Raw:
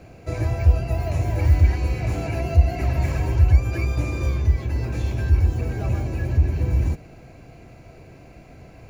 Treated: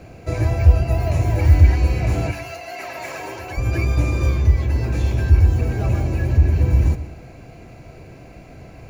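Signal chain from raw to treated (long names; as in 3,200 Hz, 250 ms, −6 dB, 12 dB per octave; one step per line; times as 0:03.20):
0:02.31–0:03.57: high-pass filter 1,100 Hz → 380 Hz 12 dB per octave
convolution reverb RT60 0.65 s, pre-delay 98 ms, DRR 14.5 dB
level +4 dB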